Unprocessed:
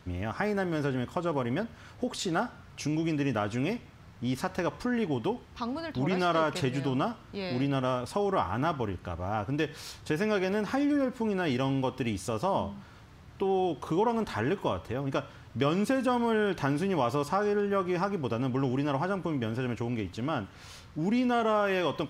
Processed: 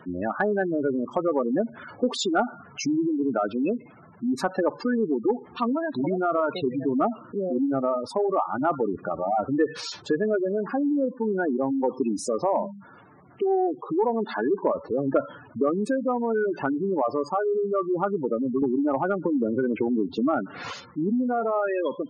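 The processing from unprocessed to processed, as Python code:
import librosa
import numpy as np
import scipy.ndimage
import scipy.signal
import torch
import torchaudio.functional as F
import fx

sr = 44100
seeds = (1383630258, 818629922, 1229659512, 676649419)

y = scipy.signal.sosfilt(scipy.signal.butter(2, 240.0, 'highpass', fs=sr, output='sos'), x)
y = fx.spec_gate(y, sr, threshold_db=-10, keep='strong')
y = fx.dynamic_eq(y, sr, hz=1000.0, q=4.6, threshold_db=-48.0, ratio=4.0, max_db=-5)
y = fx.rider(y, sr, range_db=5, speed_s=0.5)
y = 10.0 ** (-15.0 / 20.0) * np.tanh(y / 10.0 ** (-15.0 / 20.0))
y = fx.band_squash(y, sr, depth_pct=100, at=(18.62, 20.74))
y = F.gain(torch.from_numpy(y), 7.5).numpy()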